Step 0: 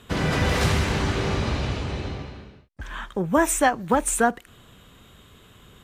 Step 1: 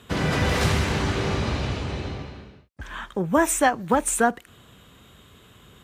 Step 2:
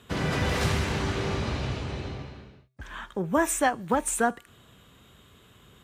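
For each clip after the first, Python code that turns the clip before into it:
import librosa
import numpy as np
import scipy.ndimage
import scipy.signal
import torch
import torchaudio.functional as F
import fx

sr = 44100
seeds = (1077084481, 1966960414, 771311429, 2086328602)

y1 = scipy.signal.sosfilt(scipy.signal.butter(2, 49.0, 'highpass', fs=sr, output='sos'), x)
y2 = fx.comb_fb(y1, sr, f0_hz=130.0, decay_s=0.57, harmonics='odd', damping=0.0, mix_pct=40)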